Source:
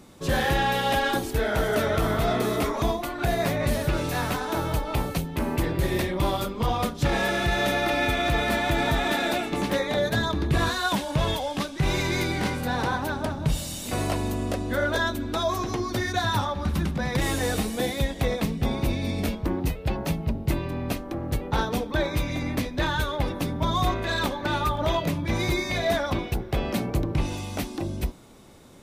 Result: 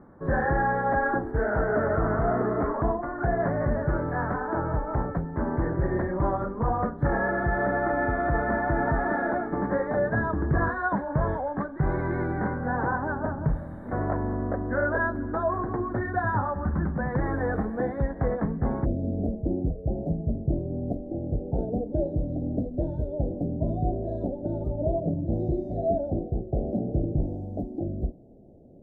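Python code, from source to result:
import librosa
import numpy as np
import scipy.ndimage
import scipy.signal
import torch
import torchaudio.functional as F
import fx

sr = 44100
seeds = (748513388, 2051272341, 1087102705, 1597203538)

y = fx.ellip_lowpass(x, sr, hz=fx.steps((0.0, 1700.0), (18.84, 690.0)), order=4, stop_db=40)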